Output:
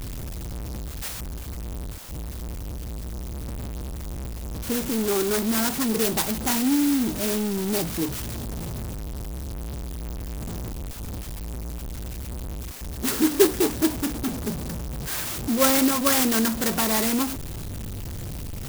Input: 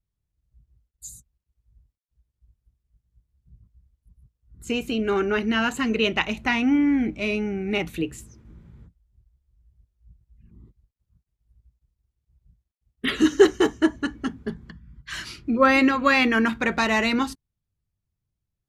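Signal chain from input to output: zero-crossing step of -22.5 dBFS; 1.08–4.81 high shelf 9500 Hz -6 dB; clock jitter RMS 0.14 ms; gain -3.5 dB

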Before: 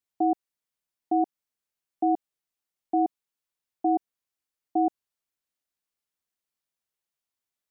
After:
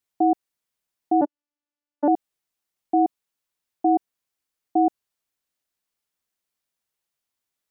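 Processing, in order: 1.21–2.08 vocoder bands 8, saw 292 Hz; gain +4.5 dB

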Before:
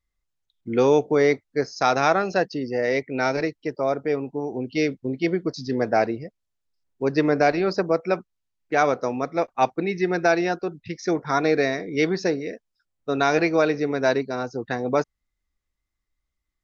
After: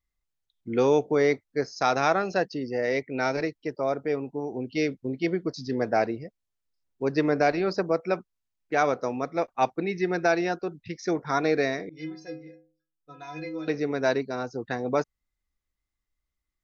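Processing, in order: 11.89–13.68 metallic resonator 150 Hz, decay 0.54 s, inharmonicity 0.03; gain -3.5 dB

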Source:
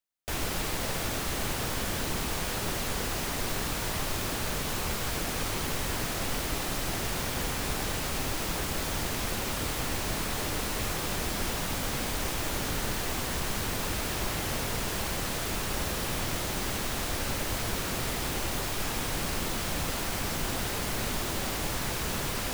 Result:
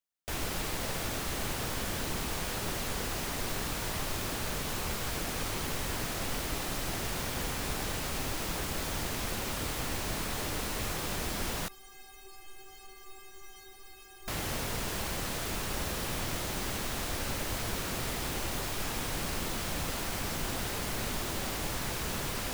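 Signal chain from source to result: 11.68–14.28 metallic resonator 380 Hz, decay 0.41 s, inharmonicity 0.008; gain -3 dB

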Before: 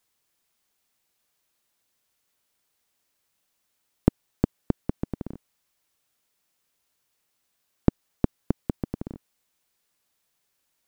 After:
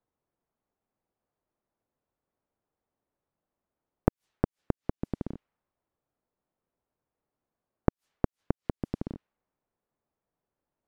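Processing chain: low-pass opened by the level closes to 800 Hz, open at -26.5 dBFS; flipped gate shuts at -12 dBFS, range -27 dB

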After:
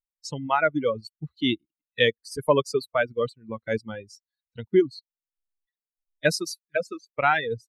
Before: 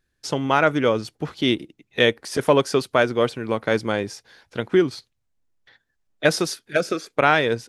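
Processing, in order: per-bin expansion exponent 2; reverb removal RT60 1.7 s

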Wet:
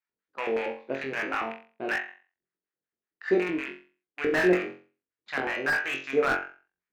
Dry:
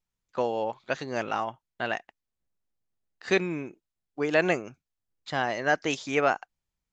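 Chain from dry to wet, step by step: rattling part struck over -45 dBFS, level -23 dBFS; LFO band-pass square 5.3 Hz 360–1700 Hz; flutter echo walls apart 3.8 m, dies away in 0.37 s; slew limiter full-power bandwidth 64 Hz; gain +5 dB

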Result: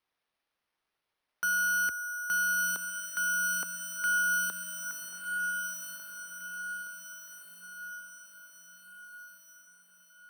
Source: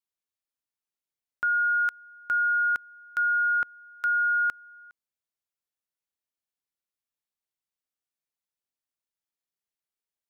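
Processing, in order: HPF 220 Hz 12 dB/oct; overdrive pedal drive 26 dB, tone 1600 Hz, clips at -20 dBFS; frequency shift +21 Hz; sample-and-hold 6×; diffused feedback echo 1.362 s, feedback 53%, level -5 dB; gain -3 dB

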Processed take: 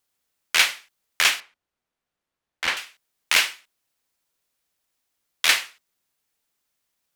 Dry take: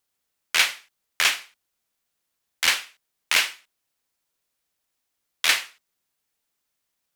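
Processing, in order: 1.4–2.77 LPF 1600 Hz 6 dB/oct; gain +1.5 dB

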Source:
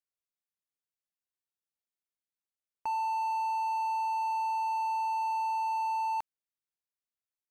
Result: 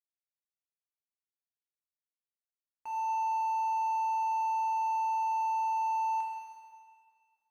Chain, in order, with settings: G.711 law mismatch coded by A; low shelf 500 Hz -5.5 dB; plate-style reverb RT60 2.1 s, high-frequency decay 0.95×, DRR -2 dB; gain -7.5 dB

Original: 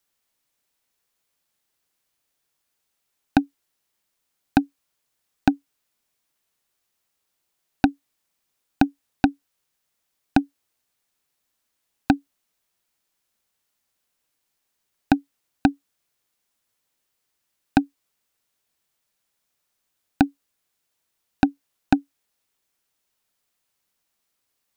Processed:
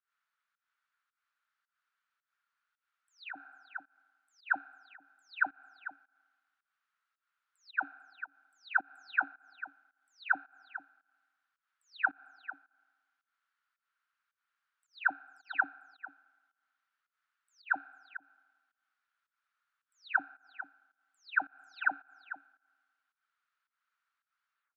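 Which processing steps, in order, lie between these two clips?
spectral delay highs early, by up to 0.287 s; ladder band-pass 1500 Hz, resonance 70%; echo 0.446 s -13.5 dB; reverb RT60 1.5 s, pre-delay 3 ms, DRR 19.5 dB; pump 109 bpm, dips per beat 1, -20 dB, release 0.174 s; gain +7.5 dB

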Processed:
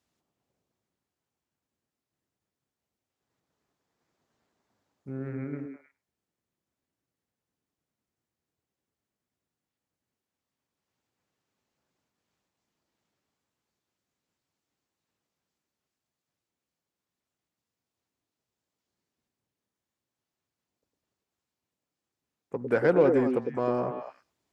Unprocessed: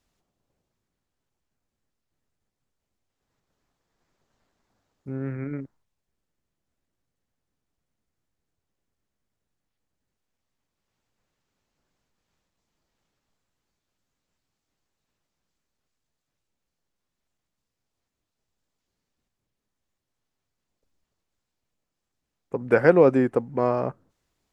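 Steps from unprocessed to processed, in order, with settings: HPF 87 Hz; in parallel at -3 dB: soft clip -20.5 dBFS, distortion -6 dB; on the sum: delay with a stepping band-pass 0.103 s, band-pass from 330 Hz, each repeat 1.4 oct, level -1.5 dB; gain -8.5 dB

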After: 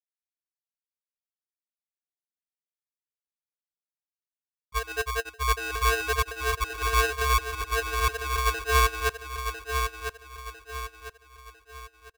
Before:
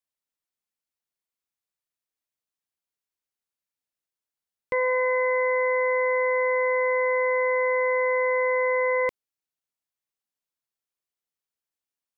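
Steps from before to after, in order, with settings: random spectral dropouts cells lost 20%; gate -21 dBFS, range -49 dB; low-pass opened by the level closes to 740 Hz, open at -30.5 dBFS; band shelf 740 Hz +12.5 dB 2.5 oct; in parallel at -0.5 dB: limiter -28 dBFS, peak gain reduction 8 dB; on the sum: LFO high-pass sine 2.7 Hz 400–2000 Hz; fixed phaser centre 1000 Hz, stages 8; on a send: feedback echo 1.001 s, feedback 39%, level -6.5 dB; on the sum: polarity switched at an audio rate 570 Hz

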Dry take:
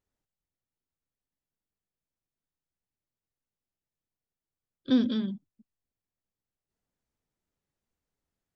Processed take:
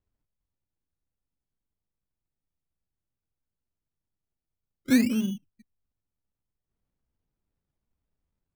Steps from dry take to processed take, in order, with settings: Chebyshev low-pass 1600 Hz, order 8; low shelf 140 Hz +11.5 dB; decimation with a swept rate 28×, swing 100% 0.52 Hz

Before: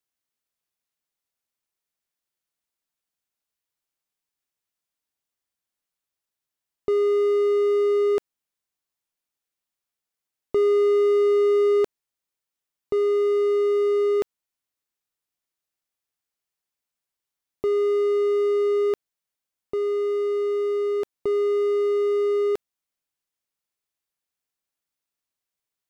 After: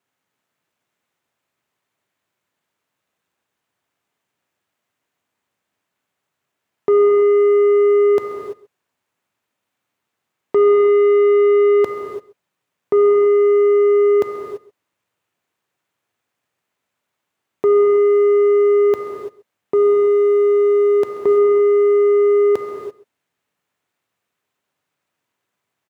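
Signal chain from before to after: median filter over 9 samples; HPF 94 Hz 24 dB/oct; in parallel at +0.5 dB: limiter -23.5 dBFS, peak gain reduction 8.5 dB; on the sum: soft clip -18.5 dBFS, distortion -16 dB; on a send: echo 0.133 s -19.5 dB; on the sum: non-linear reverb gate 0.36 s flat, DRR 3 dB; gain +7.5 dB

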